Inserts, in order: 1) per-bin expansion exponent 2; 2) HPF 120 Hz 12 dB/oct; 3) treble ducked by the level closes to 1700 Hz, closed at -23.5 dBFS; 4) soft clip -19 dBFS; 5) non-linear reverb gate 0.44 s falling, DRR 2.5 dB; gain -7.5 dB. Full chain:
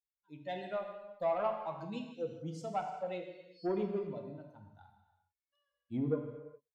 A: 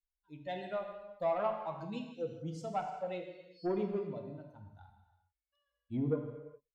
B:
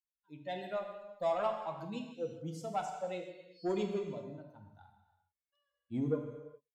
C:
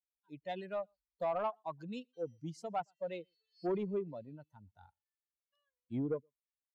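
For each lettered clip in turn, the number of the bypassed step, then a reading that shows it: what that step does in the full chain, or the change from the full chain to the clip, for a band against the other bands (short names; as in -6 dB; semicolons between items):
2, 125 Hz band +1.5 dB; 3, 4 kHz band +3.0 dB; 5, momentary loudness spread change -1 LU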